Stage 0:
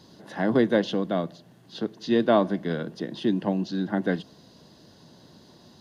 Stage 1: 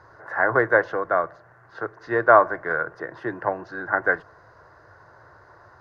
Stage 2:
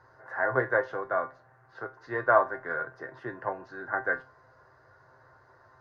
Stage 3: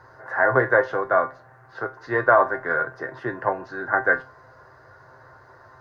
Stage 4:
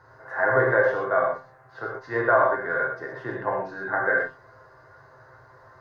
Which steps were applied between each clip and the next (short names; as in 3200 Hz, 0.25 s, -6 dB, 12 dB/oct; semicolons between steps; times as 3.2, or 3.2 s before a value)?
EQ curve 110 Hz 0 dB, 210 Hz -28 dB, 340 Hz -9 dB, 480 Hz -2 dB, 830 Hz +2 dB, 1400 Hz +13 dB, 2000 Hz +2 dB, 3200 Hz -26 dB, 5500 Hz -17 dB, 9200 Hz -22 dB; gain +5 dB
resonator 130 Hz, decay 0.22 s, harmonics all, mix 80%
maximiser +13 dB; gain -4 dB
non-linear reverb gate 0.15 s flat, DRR -1 dB; gain -5.5 dB